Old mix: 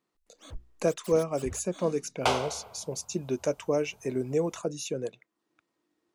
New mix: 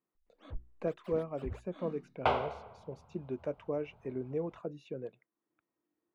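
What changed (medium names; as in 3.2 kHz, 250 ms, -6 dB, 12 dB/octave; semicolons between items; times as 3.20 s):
speech -7.0 dB; master: add distance through air 490 m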